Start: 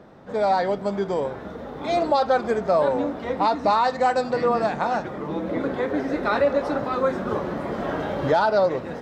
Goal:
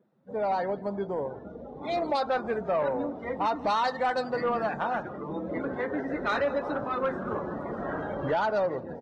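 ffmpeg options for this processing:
-filter_complex "[0:a]asettb=1/sr,asplit=3[a][b][c];[a]atrim=end=2.424[d];[b]atrim=start=2.42:end=3.65,asetpts=PTS-STARTPTS,afade=t=in:d=0.004:c=qsin,afade=t=out:st=1.226:d=0.004:c=qsin,acrossover=split=4200[e][f];[f]acompressor=threshold=-49dB:ratio=4:attack=1:release=60[g];[e][g]amix=inputs=2:normalize=0[h];[c]atrim=start=3.646[i];[d][h]acrossfade=d=0.004:c1=hsin:c2=qsin[j];[j][i]acrossfade=d=0.004:c1=qsin:c2=hsin,afftdn=nr=21:nf=-34,acrossover=split=1500[k][l];[l]dynaudnorm=f=880:g=5:m=7.5dB[m];[k][m]amix=inputs=2:normalize=0,asoftclip=type=tanh:threshold=-13dB,asplit=3[n][o][p];[o]adelay=171,afreqshift=-31,volume=-22dB[q];[p]adelay=342,afreqshift=-62,volume=-31.1dB[r];[n][q][r]amix=inputs=3:normalize=0,volume=-6dB" -ar 22050 -c:a libvorbis -b:a 32k

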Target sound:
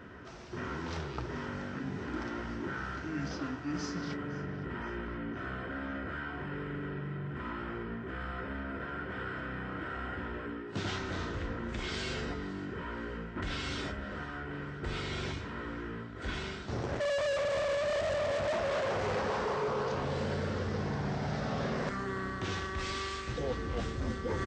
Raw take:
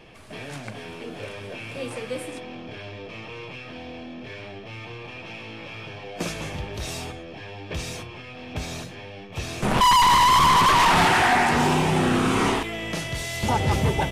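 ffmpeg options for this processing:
-af "highpass=91,equalizer=f=650:t=o:w=0.43:g=2.5,areverse,acompressor=threshold=-33dB:ratio=5,areverse,aecho=1:1:297|594|891|1188:0.106|0.0572|0.0309|0.0167,asetrate=25442,aresample=44100"

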